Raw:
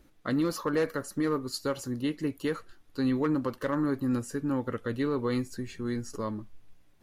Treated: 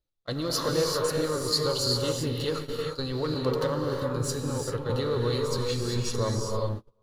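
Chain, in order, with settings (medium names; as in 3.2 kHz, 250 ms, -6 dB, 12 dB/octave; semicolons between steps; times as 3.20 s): bass shelf 170 Hz +4 dB; in parallel at -3 dB: crossover distortion -47 dBFS; on the sum: peak limiter -22 dBFS, peak gain reduction 9 dB; graphic EQ 125/250/500/2000/4000 Hz +3/-12/+5/-7/+11 dB; on a send: bucket-brigade echo 441 ms, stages 4096, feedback 34%, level -12 dB; on the sum: gated-style reverb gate 420 ms rising, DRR -0.5 dB; gate -34 dBFS, range -29 dB; 3.34–4.90 s: three bands expanded up and down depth 70%; trim +2 dB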